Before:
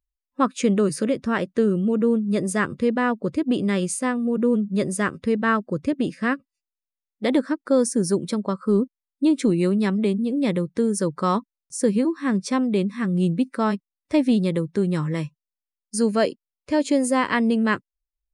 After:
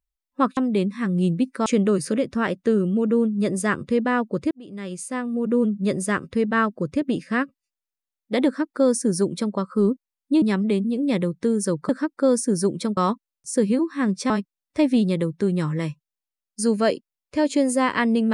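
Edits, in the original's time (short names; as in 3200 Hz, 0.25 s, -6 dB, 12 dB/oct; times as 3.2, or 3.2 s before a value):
3.42–4.49 fade in
7.37–8.45 copy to 11.23
9.33–9.76 cut
12.56–13.65 move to 0.57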